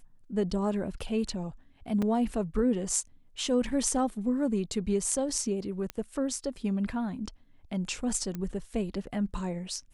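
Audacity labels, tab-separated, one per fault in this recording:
2.020000	2.020000	drop-out 4.5 ms
5.900000	5.900000	click −19 dBFS
8.350000	8.350000	click −23 dBFS

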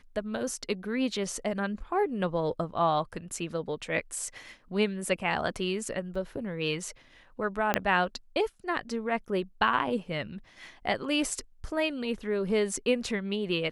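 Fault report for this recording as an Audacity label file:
6.150000	6.150000	drop-out 4.7 ms
7.740000	7.740000	click −9 dBFS

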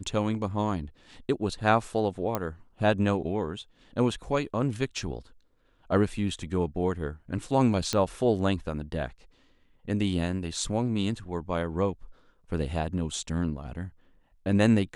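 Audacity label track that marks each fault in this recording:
2.350000	2.350000	click −13 dBFS
7.930000	7.930000	click −13 dBFS

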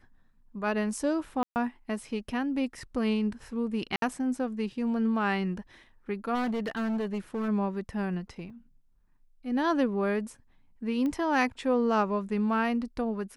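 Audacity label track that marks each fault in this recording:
1.430000	1.560000	drop-out 129 ms
3.960000	4.020000	drop-out 62 ms
6.340000	7.490000	clipping −27 dBFS
8.500000	8.500000	drop-out 3.9 ms
11.060000	11.060000	click −22 dBFS

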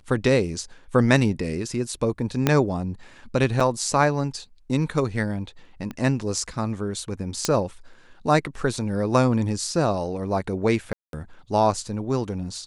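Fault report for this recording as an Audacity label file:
2.470000	2.470000	click −4 dBFS
3.600000	3.600000	drop-out 4.7 ms
5.910000	5.910000	click −20 dBFS
7.450000	7.450000	click −6 dBFS
10.930000	11.130000	drop-out 202 ms

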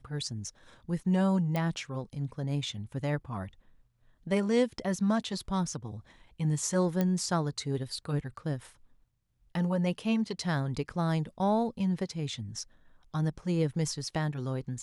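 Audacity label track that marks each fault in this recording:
1.560000	1.560000	click −18 dBFS
7.010000	7.010000	click −16 dBFS

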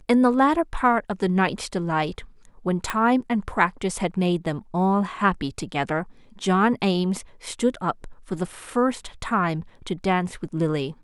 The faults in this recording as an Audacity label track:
2.900000	2.900000	click −10 dBFS

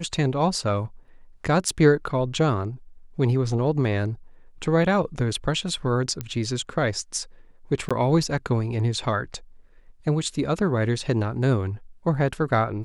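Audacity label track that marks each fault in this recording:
1.690000	1.690000	drop-out 2.4 ms
6.210000	6.210000	click −15 dBFS
7.890000	7.910000	drop-out 16 ms

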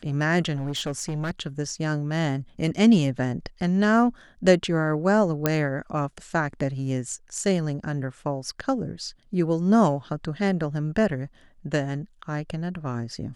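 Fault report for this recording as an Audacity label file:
0.550000	1.310000	clipping −24.5 dBFS
5.460000	5.460000	click −6 dBFS

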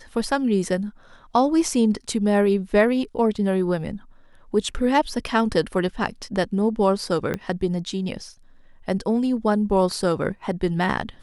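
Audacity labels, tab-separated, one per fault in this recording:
7.340000	7.340000	click −13 dBFS

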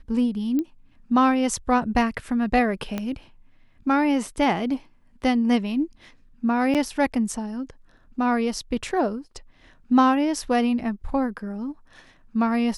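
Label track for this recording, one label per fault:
0.590000	0.590000	click −15 dBFS
2.980000	2.980000	click −14 dBFS
6.740000	6.750000	drop-out 7.9 ms

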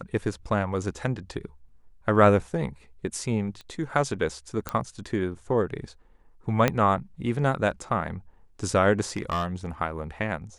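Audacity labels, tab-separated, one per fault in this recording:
3.610000	3.610000	click −28 dBFS
4.690000	4.690000	click −13 dBFS
6.680000	6.680000	click −7 dBFS
9.160000	9.660000	clipping −22 dBFS

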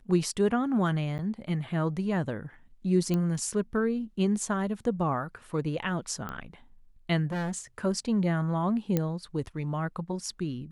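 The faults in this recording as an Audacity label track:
1.180000	1.190000	drop-out 9.4 ms
3.140000	3.140000	click −17 dBFS
6.290000	6.290000	click −22 dBFS
7.310000	7.590000	clipping −28.5 dBFS
8.970000	8.970000	click −13 dBFS

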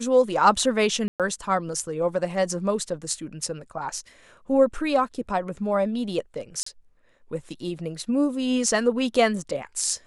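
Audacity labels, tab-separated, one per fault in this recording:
1.080000	1.200000	drop-out 117 ms
6.630000	6.660000	drop-out 34 ms

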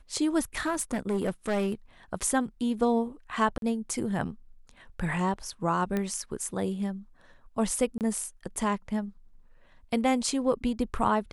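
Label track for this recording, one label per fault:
0.570000	1.740000	clipping −23.5 dBFS
3.580000	3.620000	drop-out 42 ms
5.970000	5.970000	click −17 dBFS
7.980000	8.010000	drop-out 28 ms

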